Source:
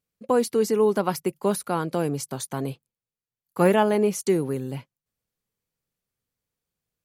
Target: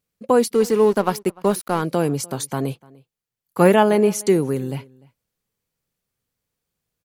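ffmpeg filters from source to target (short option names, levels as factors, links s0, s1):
-filter_complex "[0:a]asplit=3[s0][s1][s2];[s0]afade=t=out:st=0.52:d=0.02[s3];[s1]aeval=exprs='sgn(val(0))*max(abs(val(0))-0.0106,0)':c=same,afade=t=in:st=0.52:d=0.02,afade=t=out:st=1.81:d=0.02[s4];[s2]afade=t=in:st=1.81:d=0.02[s5];[s3][s4][s5]amix=inputs=3:normalize=0,asplit=2[s6][s7];[s7]adelay=297.4,volume=0.0631,highshelf=f=4000:g=-6.69[s8];[s6][s8]amix=inputs=2:normalize=0,volume=1.78"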